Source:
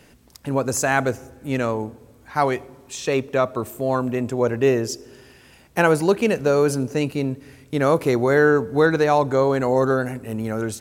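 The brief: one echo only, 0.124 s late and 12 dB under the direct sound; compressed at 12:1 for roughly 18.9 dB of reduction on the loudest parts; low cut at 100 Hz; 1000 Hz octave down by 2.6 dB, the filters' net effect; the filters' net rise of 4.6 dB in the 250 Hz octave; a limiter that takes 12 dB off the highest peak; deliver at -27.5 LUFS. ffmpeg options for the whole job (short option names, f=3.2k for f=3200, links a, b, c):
-af "highpass=100,equalizer=f=250:t=o:g=6,equalizer=f=1k:t=o:g=-4,acompressor=threshold=-30dB:ratio=12,alimiter=level_in=4dB:limit=-24dB:level=0:latency=1,volume=-4dB,aecho=1:1:124:0.251,volume=11dB"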